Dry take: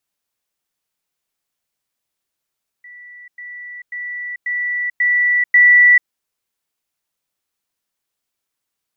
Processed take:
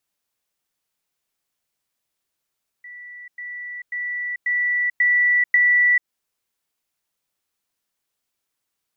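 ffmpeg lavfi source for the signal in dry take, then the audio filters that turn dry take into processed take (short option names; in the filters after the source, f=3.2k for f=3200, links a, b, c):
-f lavfi -i "aevalsrc='pow(10,(-36+6*floor(t/0.54))/20)*sin(2*PI*1960*t)*clip(min(mod(t,0.54),0.44-mod(t,0.54))/0.005,0,1)':d=3.24:s=44100"
-af "acompressor=threshold=-15dB:ratio=6"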